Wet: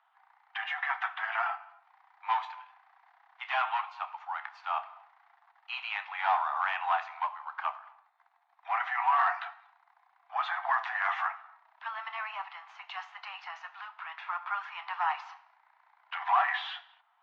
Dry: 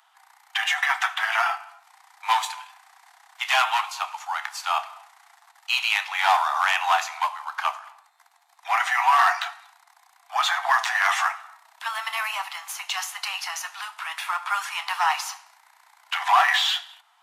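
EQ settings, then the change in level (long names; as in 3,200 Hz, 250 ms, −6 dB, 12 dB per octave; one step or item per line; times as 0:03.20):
high-pass filter 860 Hz 6 dB per octave
high-frequency loss of the air 120 metres
head-to-tape spacing loss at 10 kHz 43 dB
0.0 dB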